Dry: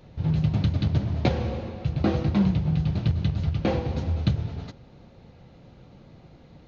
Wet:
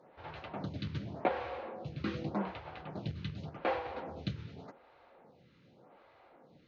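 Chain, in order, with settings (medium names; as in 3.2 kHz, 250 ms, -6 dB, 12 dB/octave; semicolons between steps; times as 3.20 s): band-pass filter 1.2 kHz, Q 0.67; lamp-driven phase shifter 0.86 Hz; trim +1 dB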